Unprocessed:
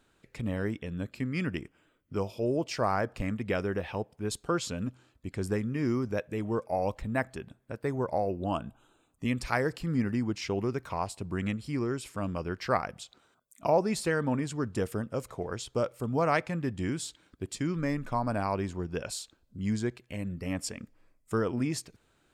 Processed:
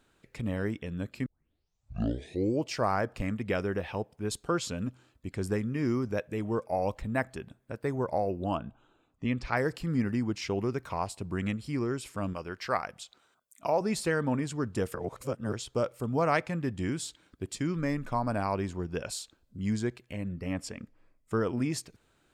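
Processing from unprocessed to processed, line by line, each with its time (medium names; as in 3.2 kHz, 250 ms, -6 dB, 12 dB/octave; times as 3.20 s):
1.26 s: tape start 1.42 s
8.55–9.57 s: distance through air 140 m
12.33–13.81 s: bass shelf 450 Hz -8 dB
14.94–15.53 s: reverse
20.13–21.41 s: treble shelf 5.5 kHz -9.5 dB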